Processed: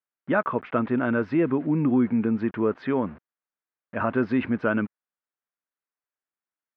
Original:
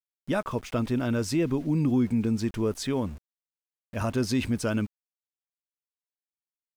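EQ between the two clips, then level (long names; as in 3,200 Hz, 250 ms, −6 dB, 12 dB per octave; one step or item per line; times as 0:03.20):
band-pass filter 190–2,400 Hz
high-frequency loss of the air 350 metres
parametric band 1,500 Hz +7.5 dB 1.2 octaves
+4.5 dB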